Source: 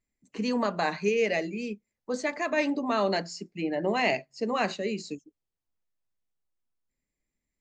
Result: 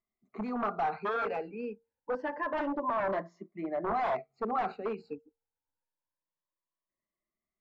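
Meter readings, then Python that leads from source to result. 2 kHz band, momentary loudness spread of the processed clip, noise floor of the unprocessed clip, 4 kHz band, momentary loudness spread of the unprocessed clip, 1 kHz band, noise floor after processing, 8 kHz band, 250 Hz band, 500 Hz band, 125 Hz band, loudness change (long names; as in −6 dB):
−8.5 dB, 11 LU, below −85 dBFS, −17.5 dB, 12 LU, 0.0 dB, below −85 dBFS, below −25 dB, −7.5 dB, −5.5 dB, −9.0 dB, −5.0 dB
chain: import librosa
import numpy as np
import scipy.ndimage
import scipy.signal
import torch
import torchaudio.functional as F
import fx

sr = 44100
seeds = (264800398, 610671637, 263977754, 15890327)

y = fx.spec_ripple(x, sr, per_octave=1.2, drift_hz=0.27, depth_db=16)
y = fx.comb_fb(y, sr, f0_hz=460.0, decay_s=0.29, harmonics='odd', damping=0.0, mix_pct=30)
y = 10.0 ** (-23.5 / 20.0) * (np.abs((y / 10.0 ** (-23.5 / 20.0) + 3.0) % 4.0 - 2.0) - 1.0)
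y = fx.lowpass_res(y, sr, hz=1100.0, q=1.6)
y = fx.low_shelf(y, sr, hz=500.0, db=-8.0)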